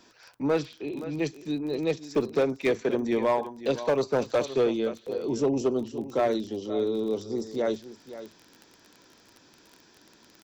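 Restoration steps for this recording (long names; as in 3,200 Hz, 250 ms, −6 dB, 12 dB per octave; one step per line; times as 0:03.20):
clipped peaks rebuilt −17.5 dBFS
click removal
echo removal 522 ms −14 dB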